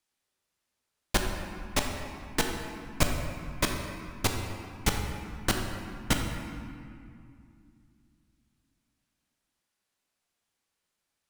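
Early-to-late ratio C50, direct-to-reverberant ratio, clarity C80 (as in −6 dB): 3.5 dB, 2.0 dB, 4.5 dB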